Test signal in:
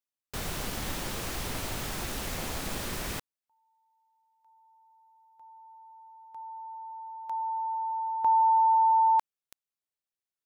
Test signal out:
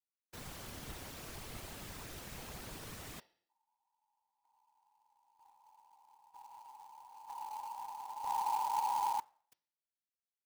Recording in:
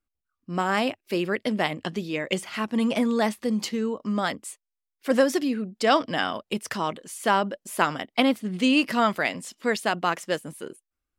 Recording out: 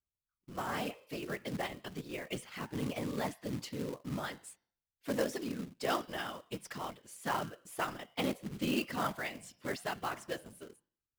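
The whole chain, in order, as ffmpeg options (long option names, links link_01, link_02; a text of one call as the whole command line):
ffmpeg -i in.wav -af "bandreject=frequency=173.3:width_type=h:width=4,bandreject=frequency=346.6:width_type=h:width=4,bandreject=frequency=519.9:width_type=h:width=4,bandreject=frequency=693.2:width_type=h:width=4,bandreject=frequency=866.5:width_type=h:width=4,bandreject=frequency=1039.8:width_type=h:width=4,bandreject=frequency=1213.1:width_type=h:width=4,bandreject=frequency=1386.4:width_type=h:width=4,bandreject=frequency=1559.7:width_type=h:width=4,bandreject=frequency=1733:width_type=h:width=4,bandreject=frequency=1906.3:width_type=h:width=4,bandreject=frequency=2079.6:width_type=h:width=4,bandreject=frequency=2252.9:width_type=h:width=4,bandreject=frequency=2426.2:width_type=h:width=4,bandreject=frequency=2599.5:width_type=h:width=4,bandreject=frequency=2772.8:width_type=h:width=4,bandreject=frequency=2946.1:width_type=h:width=4,bandreject=frequency=3119.4:width_type=h:width=4,bandreject=frequency=3292.7:width_type=h:width=4,bandreject=frequency=3466:width_type=h:width=4,bandreject=frequency=3639.3:width_type=h:width=4,bandreject=frequency=3812.6:width_type=h:width=4,bandreject=frequency=3985.9:width_type=h:width=4,bandreject=frequency=4159.2:width_type=h:width=4,bandreject=frequency=4332.5:width_type=h:width=4,bandreject=frequency=4505.8:width_type=h:width=4,bandreject=frequency=4679.1:width_type=h:width=4,bandreject=frequency=4852.4:width_type=h:width=4,bandreject=frequency=5025.7:width_type=h:width=4,bandreject=frequency=5199:width_type=h:width=4,bandreject=frequency=5372.3:width_type=h:width=4,bandreject=frequency=5545.6:width_type=h:width=4,bandreject=frequency=5718.9:width_type=h:width=4,bandreject=frequency=5892.2:width_type=h:width=4,afftfilt=real='hypot(re,im)*cos(2*PI*random(0))':imag='hypot(re,im)*sin(2*PI*random(1))':win_size=512:overlap=0.75,acrusher=bits=3:mode=log:mix=0:aa=0.000001,volume=-7dB" out.wav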